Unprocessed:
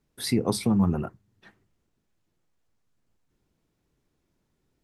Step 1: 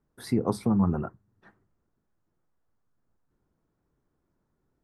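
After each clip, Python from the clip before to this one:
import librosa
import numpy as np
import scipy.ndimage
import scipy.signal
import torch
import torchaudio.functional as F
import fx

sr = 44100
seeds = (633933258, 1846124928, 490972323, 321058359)

y = fx.high_shelf_res(x, sr, hz=1900.0, db=-9.5, q=1.5)
y = y * 10.0 ** (-1.5 / 20.0)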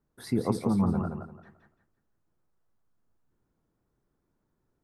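y = fx.echo_feedback(x, sr, ms=171, feedback_pct=28, wet_db=-6.0)
y = y * 10.0 ** (-2.0 / 20.0)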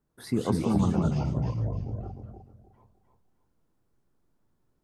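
y = fx.echo_pitch(x, sr, ms=94, semitones=-5, count=2, db_per_echo=-3.0)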